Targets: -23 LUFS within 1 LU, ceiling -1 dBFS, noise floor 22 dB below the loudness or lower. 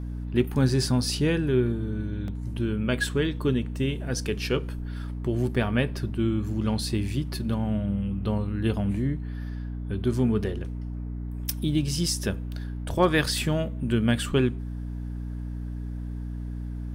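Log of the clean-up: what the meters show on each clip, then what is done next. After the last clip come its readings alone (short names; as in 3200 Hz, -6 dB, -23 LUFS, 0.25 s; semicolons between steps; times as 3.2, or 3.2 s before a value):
dropouts 1; longest dropout 1.4 ms; hum 60 Hz; harmonics up to 300 Hz; hum level -30 dBFS; loudness -27.5 LUFS; peak -9.0 dBFS; loudness target -23.0 LUFS
-> interpolate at 2.28, 1.4 ms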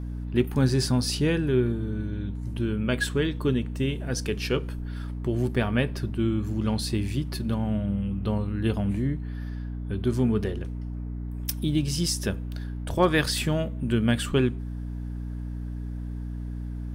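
dropouts 0; hum 60 Hz; harmonics up to 300 Hz; hum level -30 dBFS
-> notches 60/120/180/240/300 Hz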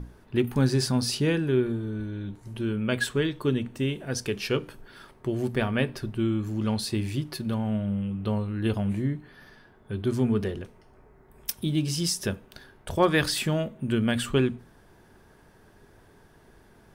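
hum none; loudness -27.5 LUFS; peak -9.0 dBFS; loudness target -23.0 LUFS
-> gain +4.5 dB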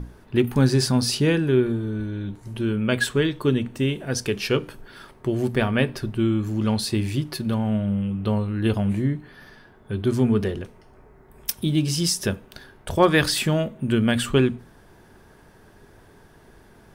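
loudness -23.0 LUFS; peak -4.5 dBFS; noise floor -52 dBFS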